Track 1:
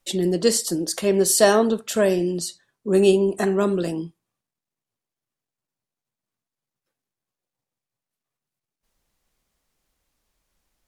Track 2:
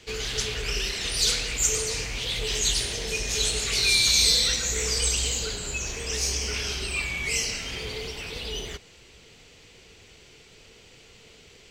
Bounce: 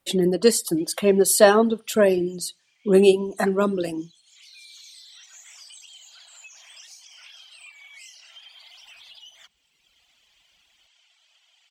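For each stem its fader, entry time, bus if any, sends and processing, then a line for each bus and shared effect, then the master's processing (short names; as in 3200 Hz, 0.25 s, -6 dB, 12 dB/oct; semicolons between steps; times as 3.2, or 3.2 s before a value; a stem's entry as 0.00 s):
+2.5 dB, 0.00 s, no send, HPF 48 Hz; bell 6200 Hz -6.5 dB
-8.5 dB, 0.70 s, no send, steep high-pass 640 Hz 72 dB/oct; bell 3200 Hz +9 dB 0.26 oct; compressor 10:1, threshold -33 dBFS, peak gain reduction 17 dB; auto duck -11 dB, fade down 1.45 s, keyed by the first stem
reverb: off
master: reverb removal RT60 1.6 s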